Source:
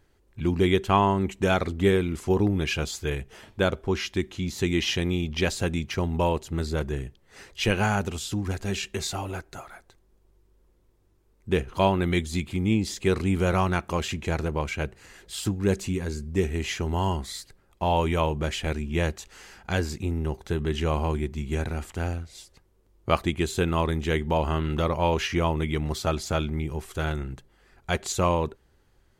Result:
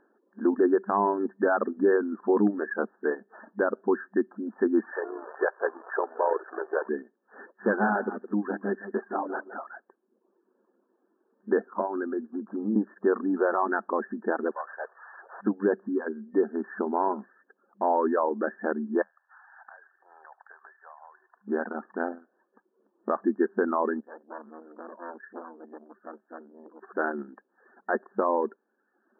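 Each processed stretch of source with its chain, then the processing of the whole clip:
0:04.92–0:06.89: converter with a step at zero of −26.5 dBFS + elliptic high-pass filter 410 Hz, stop band 60 dB + amplitude modulation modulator 59 Hz, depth 40%
0:07.65–0:09.59: gain into a clipping stage and back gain 20 dB + single-tap delay 165 ms −8.5 dB
0:11.81–0:12.76: notch filter 1,800 Hz, Q 8.1 + downward compressor 8 to 1, threshold −24 dBFS + Butterworth high-pass 160 Hz
0:14.51–0:15.41: linear delta modulator 16 kbit/s, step −40 dBFS + high-pass filter 600 Hz 24 dB per octave
0:19.02–0:21.48: Butterworth high-pass 690 Hz + downward compressor 8 to 1, threshold −48 dBFS + delay with a high-pass on its return 75 ms, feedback 70%, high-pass 1,600 Hz, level −6 dB
0:24.00–0:26.83: transistor ladder low-pass 4,100 Hz, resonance 75% + saturating transformer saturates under 2,300 Hz
whole clip: brick-wall band-pass 200–1,800 Hz; reverb reduction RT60 0.7 s; brickwall limiter −18 dBFS; level +4.5 dB

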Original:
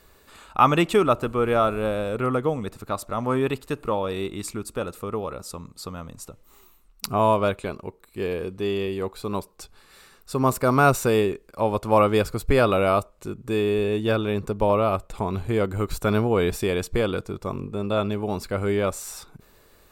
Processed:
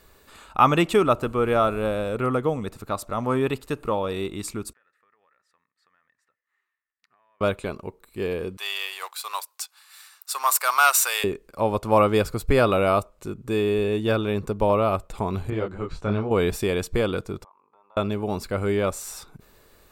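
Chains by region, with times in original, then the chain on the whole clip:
0:04.73–0:07.41: resonant band-pass 1,800 Hz, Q 16 + downward compressor 12 to 1, threshold −60 dBFS
0:08.57–0:11.24: leveller curve on the samples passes 1 + high-pass filter 810 Hz 24 dB per octave + spectral tilt +2.5 dB per octave
0:15.50–0:16.31: high-frequency loss of the air 130 metres + micro pitch shift up and down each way 29 cents
0:17.44–0:17.97: four-pole ladder band-pass 990 Hz, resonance 75% + downward compressor 2.5 to 1, threshold −59 dBFS
whole clip: no processing

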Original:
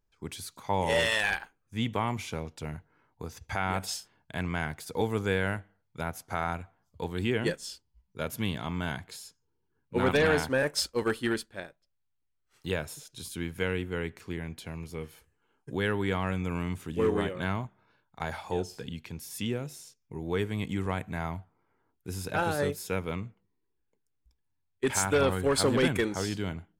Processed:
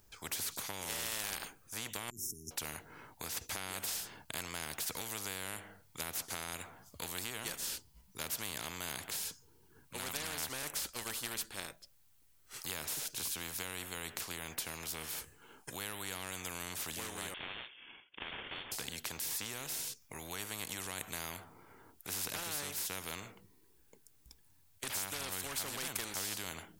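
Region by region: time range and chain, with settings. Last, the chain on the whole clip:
0:02.10–0:02.51: compressor whose output falls as the input rises −44 dBFS + linear-phase brick-wall band-stop 420–5,200 Hz
0:17.34–0:18.72: lower of the sound and its delayed copy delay 1.7 ms + high-pass filter 490 Hz 24 dB per octave + voice inversion scrambler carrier 3,900 Hz
whole clip: high-shelf EQ 5,500 Hz +11.5 dB; downward compressor, threshold −29 dBFS; every bin compressed towards the loudest bin 4 to 1; level −1.5 dB

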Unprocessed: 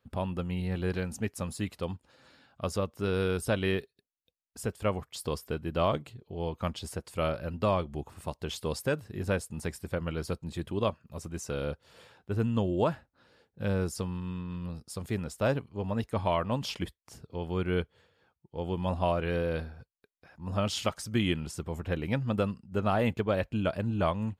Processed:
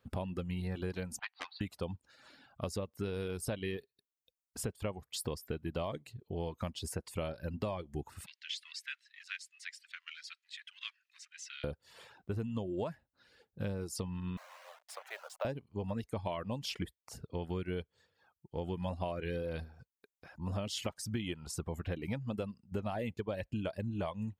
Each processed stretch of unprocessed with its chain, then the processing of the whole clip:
0:01.19–0:01.61: linear-phase brick-wall band-pass 710–4,700 Hz + highs frequency-modulated by the lows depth 0.55 ms
0:08.26–0:11.64: mu-law and A-law mismatch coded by mu + Butterworth high-pass 1,800 Hz + high-frequency loss of the air 140 metres
0:14.37–0:15.45: hold until the input has moved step −43 dBFS + elliptic high-pass filter 590 Hz, stop band 60 dB + high-shelf EQ 4,100 Hz −10 dB
whole clip: reverb reduction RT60 0.72 s; dynamic equaliser 1,300 Hz, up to −6 dB, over −48 dBFS, Q 2.4; downward compressor, threshold −36 dBFS; level +2 dB

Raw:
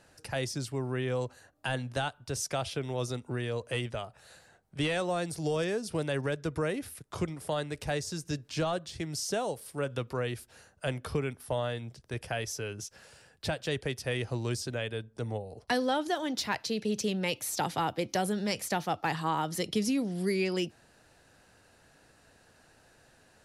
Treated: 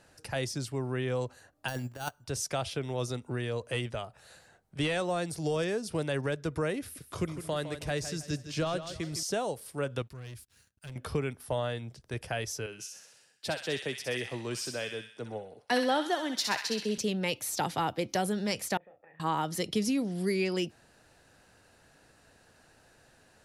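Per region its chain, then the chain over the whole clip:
0:01.68–0:02.24: bad sample-rate conversion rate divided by 6×, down filtered, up hold + transient designer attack +2 dB, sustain −9 dB + compressor whose output falls as the input rises −34 dBFS, ratio −0.5
0:06.80–0:09.23: parametric band 830 Hz −6 dB 0.35 octaves + repeating echo 159 ms, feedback 34%, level −11 dB
0:10.02–0:10.96: guitar amp tone stack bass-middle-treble 6-0-2 + leveller curve on the samples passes 3
0:12.66–0:16.98: high-pass filter 190 Hz + delay with a high-pass on its return 64 ms, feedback 59%, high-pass 1,600 Hz, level −4 dB + multiband upward and downward expander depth 40%
0:18.77–0:19.20: downward compressor 12 to 1, threshold −39 dBFS + formant resonators in series e + double-tracking delay 32 ms −6 dB
whole clip: no processing

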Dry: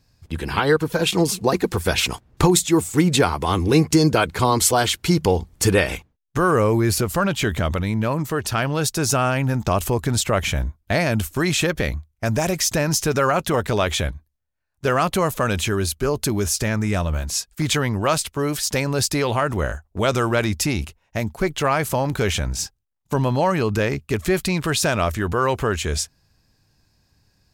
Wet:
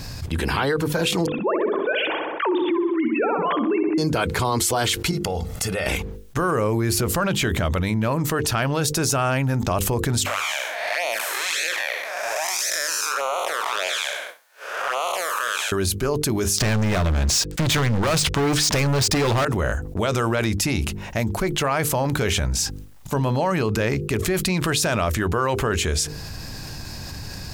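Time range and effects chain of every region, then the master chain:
0:01.26–0:03.98: three sine waves on the formant tracks + feedback echo with a low-pass in the loop 64 ms, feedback 64%, low-pass 2,300 Hz, level −6.5 dB
0:05.11–0:05.86: low-shelf EQ 110 Hz −9.5 dB + downward compressor, threshold −30 dBFS + comb filter 1.5 ms, depth 58%
0:10.26–0:15.72: spectrum smeared in time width 219 ms + high-pass filter 660 Hz 24 dB per octave + flanger swept by the level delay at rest 9.8 ms, full sweep at −24 dBFS
0:16.58–0:19.45: low-pass filter 6,600 Hz + parametric band 140 Hz +3.5 dB 0.84 octaves + leveller curve on the samples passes 5
whole clip: mains-hum notches 50/100/150/200/250/300/350/400/450/500 Hz; brickwall limiter −11.5 dBFS; envelope flattener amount 70%; level −5.5 dB

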